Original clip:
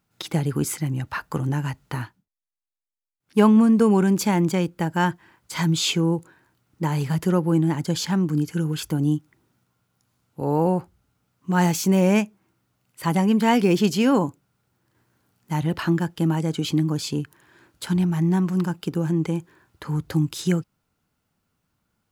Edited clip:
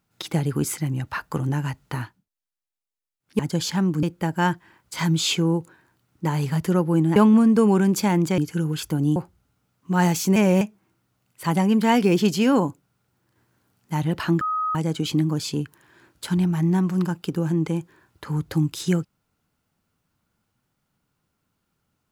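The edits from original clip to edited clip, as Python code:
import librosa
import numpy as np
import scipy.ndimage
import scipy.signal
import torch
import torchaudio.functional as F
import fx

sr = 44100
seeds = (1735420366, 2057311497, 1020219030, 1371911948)

y = fx.edit(x, sr, fx.swap(start_s=3.39, length_s=1.22, other_s=7.74, other_length_s=0.64),
    fx.cut(start_s=9.16, length_s=1.59),
    fx.reverse_span(start_s=11.95, length_s=0.25),
    fx.bleep(start_s=16.0, length_s=0.34, hz=1260.0, db=-21.5), tone=tone)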